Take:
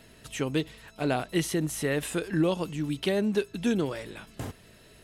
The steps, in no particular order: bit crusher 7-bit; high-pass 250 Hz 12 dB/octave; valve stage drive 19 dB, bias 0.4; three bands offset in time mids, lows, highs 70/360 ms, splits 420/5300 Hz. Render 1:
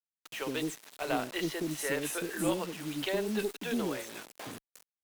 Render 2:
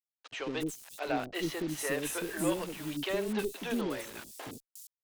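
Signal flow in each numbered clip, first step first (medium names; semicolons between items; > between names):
three bands offset in time > bit crusher > high-pass > valve stage; high-pass > bit crusher > valve stage > three bands offset in time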